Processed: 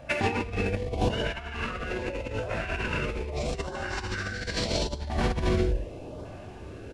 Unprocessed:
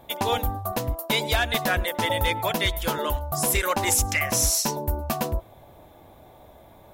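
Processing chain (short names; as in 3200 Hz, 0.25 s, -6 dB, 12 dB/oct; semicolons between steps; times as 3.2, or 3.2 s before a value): CVSD 64 kbps; high shelf 4800 Hz -7 dB; non-linear reverb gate 0.41 s flat, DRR -3 dB; LFO notch saw up 0.8 Hz 380–2900 Hz; formant shift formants -5 st; bell 8500 Hz -8.5 dB 0.95 oct; on a send: echo 71 ms -10 dB; on the sum: negative-ratio compressor -28 dBFS, ratio -0.5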